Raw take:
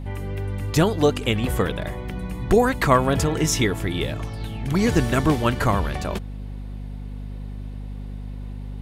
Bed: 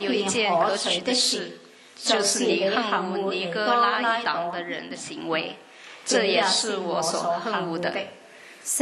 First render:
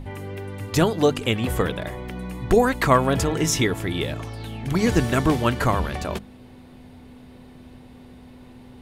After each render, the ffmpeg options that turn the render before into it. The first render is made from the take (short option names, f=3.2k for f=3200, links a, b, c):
-af "bandreject=f=50:t=h:w=6,bandreject=f=100:t=h:w=6,bandreject=f=150:t=h:w=6,bandreject=f=200:t=h:w=6"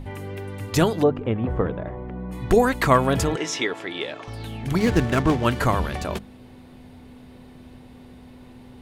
-filter_complex "[0:a]asplit=3[a][b][c];[a]afade=t=out:st=1.02:d=0.02[d];[b]lowpass=1.1k,afade=t=in:st=1.02:d=0.02,afade=t=out:st=2.31:d=0.02[e];[c]afade=t=in:st=2.31:d=0.02[f];[d][e][f]amix=inputs=3:normalize=0,asettb=1/sr,asplit=3[g][h][i];[g]atrim=end=3.364[j];[h]atrim=start=3.36:end=4.28,asetpts=PTS-STARTPTS,afade=t=in:d=0.004:c=qsin,afade=t=out:st=0.916:d=0.004:c=qsin,highpass=400,lowpass=4.8k[k];[i]atrim=start=4.276[l];[j][k]acrossfade=d=0.004:c1=hsin:c2=qsin[m];[m][l]acrossfade=d=0.004:c1=qsin:c2=hsin,asettb=1/sr,asplit=3[n][o][p];[n]atrim=end=4.794[q];[o]atrim=start=4.79:end=5.45,asetpts=PTS-STARTPTS,afade=t=in:d=0.004:c=qsin,afade=t=out:st=0.656:d=0.004:c=qsin,adynamicsmooth=sensitivity=6.5:basefreq=870[r];[p]atrim=start=5.446[s];[q][r]acrossfade=d=0.004:c1=hsin:c2=qsin[t];[t][s]acrossfade=d=0.004:c1=qsin:c2=hsin"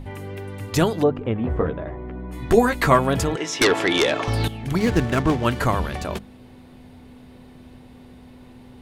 -filter_complex "[0:a]asettb=1/sr,asplit=3[a][b][c];[a]atrim=end=1.384[d];[b]atrim=start=1.38:end=2.99,asetpts=PTS-STARTPTS,afade=t=in:d=0.004:c=qsin,afade=t=out:st=1.606:d=0.004:c=qsin,asplit=2[e][f];[f]adelay=13,volume=-4.5dB[g];[e][g]amix=inputs=2:normalize=0,atrim=end_sample=71001[h];[c]atrim=start=2.986[i];[d][h]acrossfade=d=0.004:c1=hsin:c2=qsin[j];[j][i]acrossfade=d=0.004:c1=qsin:c2=hsin,asettb=1/sr,asplit=3[k][l][m];[k]atrim=end=3.614[n];[l]atrim=start=3.61:end=4.48,asetpts=PTS-STARTPTS,afade=t=in:d=0.004:c=qsin,afade=t=out:st=0.866:d=0.004:c=qsin,aeval=exprs='0.266*sin(PI/2*2.82*val(0)/0.266)':c=same[o];[m]atrim=start=4.476[p];[n][o]acrossfade=d=0.004:c1=hsin:c2=qsin[q];[q][p]acrossfade=d=0.004:c1=qsin:c2=hsin"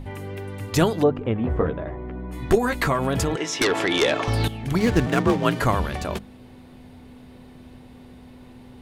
-filter_complex "[0:a]asettb=1/sr,asplit=3[a][b][c];[a]atrim=end=2.554[d];[b]atrim=start=2.55:end=4.02,asetpts=PTS-STARTPTS,afade=t=in:d=0.004:c=qsin,afade=t=out:st=1.466:d=0.004:c=qsin,acompressor=threshold=-17dB:ratio=6:attack=3.2:release=140:knee=1:detection=peak[e];[c]atrim=start=4.016[f];[d][e]acrossfade=d=0.004:c1=hsin:c2=qsin[g];[g][f]acrossfade=d=0.004:c1=qsin:c2=hsin,asettb=1/sr,asplit=3[h][i][j];[h]atrim=end=5.064[k];[i]atrim=start=5.06:end=5.62,asetpts=PTS-STARTPTS,afade=t=in:d=0.004:c=qsin,afade=t=out:st=0.556:d=0.004:c=qsin,afreqshift=46[l];[j]atrim=start=5.616[m];[k][l]acrossfade=d=0.004:c1=hsin:c2=qsin[n];[n][m]acrossfade=d=0.004:c1=qsin:c2=hsin"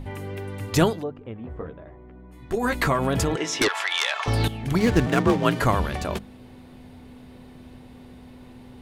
-filter_complex "[0:a]asettb=1/sr,asplit=3[a][b][c];[a]atrim=end=3.684[d];[b]atrim=start=3.68:end=4.26,asetpts=PTS-STARTPTS,afade=t=in:d=0.004:c=qsin,afade=t=out:st=0.576:d=0.004:c=qsin,highpass=f=860:w=0.5412,highpass=f=860:w=1.3066[e];[c]atrim=start=4.256[f];[d][e]acrossfade=d=0.004:c1=hsin:c2=qsin[g];[g][f]acrossfade=d=0.004:c1=qsin:c2=hsin,asplit=3[h][i][j];[h]atrim=end=1.02,asetpts=PTS-STARTPTS,afade=t=out:st=0.88:d=0.14:silence=0.237137[k];[i]atrim=start=1.02:end=2.52,asetpts=PTS-STARTPTS,volume=-12.5dB[l];[j]atrim=start=2.52,asetpts=PTS-STARTPTS,afade=t=in:d=0.14:silence=0.237137[m];[k][l][m]concat=n=3:v=0:a=1"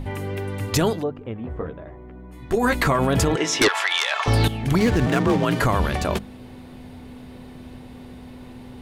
-af "alimiter=limit=-14.5dB:level=0:latency=1:release=38,acontrast=21"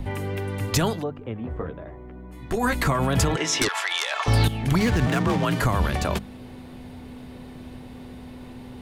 -filter_complex "[0:a]acrossover=split=250|560|5400[a][b][c][d];[b]acompressor=threshold=-34dB:ratio=6[e];[c]alimiter=limit=-16dB:level=0:latency=1:release=147[f];[a][e][f][d]amix=inputs=4:normalize=0"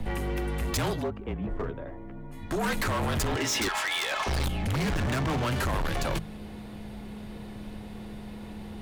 -af "afreqshift=-40,asoftclip=type=hard:threshold=-25.5dB"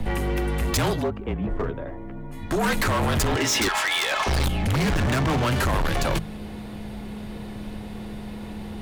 -af "volume=5.5dB"